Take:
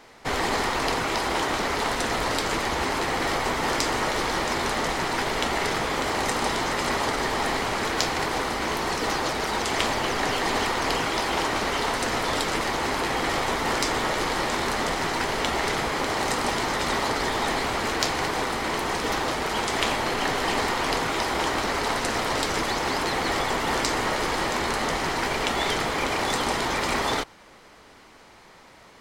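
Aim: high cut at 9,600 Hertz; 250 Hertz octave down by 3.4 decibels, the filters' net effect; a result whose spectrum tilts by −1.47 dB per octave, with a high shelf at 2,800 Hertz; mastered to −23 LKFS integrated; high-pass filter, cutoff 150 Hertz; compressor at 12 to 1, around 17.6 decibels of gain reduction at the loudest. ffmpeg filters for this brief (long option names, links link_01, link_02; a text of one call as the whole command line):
ffmpeg -i in.wav -af "highpass=150,lowpass=9600,equalizer=frequency=250:width_type=o:gain=-4,highshelf=frequency=2800:gain=4,acompressor=threshold=-38dB:ratio=12,volume=17dB" out.wav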